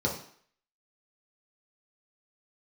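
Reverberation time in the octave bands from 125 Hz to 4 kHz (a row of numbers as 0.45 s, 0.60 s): 0.45 s, 0.50 s, 0.50 s, 0.60 s, 0.60 s, 0.55 s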